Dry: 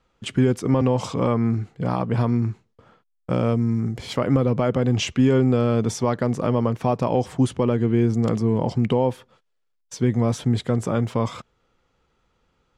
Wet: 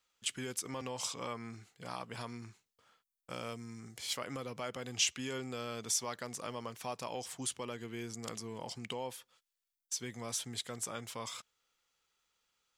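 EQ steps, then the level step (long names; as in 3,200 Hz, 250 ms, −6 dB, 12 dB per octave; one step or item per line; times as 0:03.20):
first-order pre-emphasis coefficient 0.97
+2.0 dB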